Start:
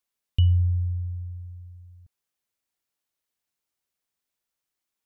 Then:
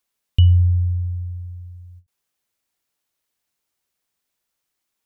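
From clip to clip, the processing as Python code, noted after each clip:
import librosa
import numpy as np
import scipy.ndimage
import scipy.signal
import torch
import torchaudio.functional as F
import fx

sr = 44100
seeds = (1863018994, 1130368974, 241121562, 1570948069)

y = fx.end_taper(x, sr, db_per_s=370.0)
y = y * librosa.db_to_amplitude(6.5)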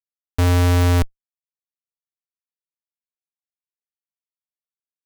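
y = fx.self_delay(x, sr, depth_ms=0.22)
y = fx.schmitt(y, sr, flips_db=-19.5)
y = y * librosa.db_to_amplitude(8.5)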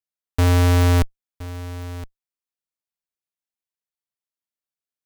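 y = x + 10.0 ** (-16.5 / 20.0) * np.pad(x, (int(1018 * sr / 1000.0), 0))[:len(x)]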